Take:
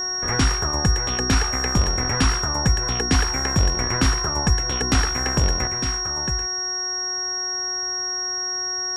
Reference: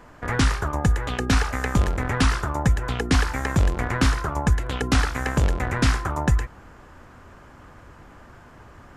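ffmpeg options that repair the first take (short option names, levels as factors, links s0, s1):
-af "bandreject=f=366.8:t=h:w=4,bandreject=f=733.6:t=h:w=4,bandreject=f=1100.4:t=h:w=4,bandreject=f=1467.2:t=h:w=4,bandreject=f=1834:t=h:w=4,bandreject=f=5600:w=30,asetnsamples=n=441:p=0,asendcmd='5.67 volume volume 8dB',volume=1"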